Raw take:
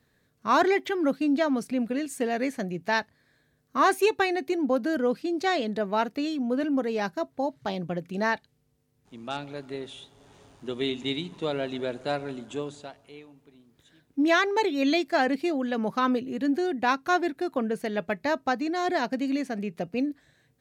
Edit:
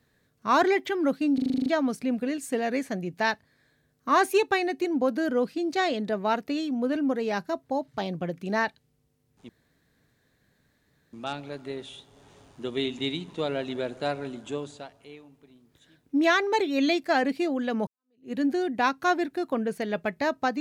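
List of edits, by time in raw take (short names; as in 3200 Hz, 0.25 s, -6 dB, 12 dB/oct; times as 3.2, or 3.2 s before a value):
1.34 stutter 0.04 s, 9 plays
9.17 insert room tone 1.64 s
15.91–16.36 fade in exponential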